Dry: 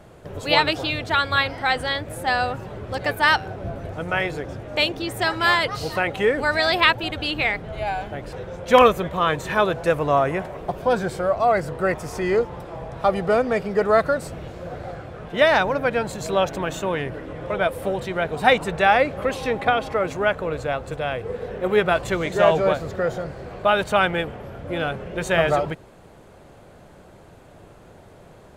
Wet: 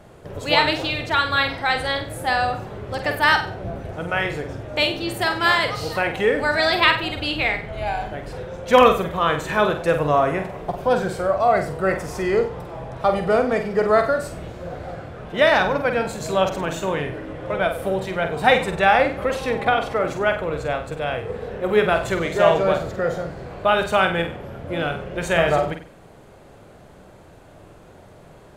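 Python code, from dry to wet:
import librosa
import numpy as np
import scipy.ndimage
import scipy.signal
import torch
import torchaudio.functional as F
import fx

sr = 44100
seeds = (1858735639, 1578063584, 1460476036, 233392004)

y = fx.room_flutter(x, sr, wall_m=8.1, rt60_s=0.39)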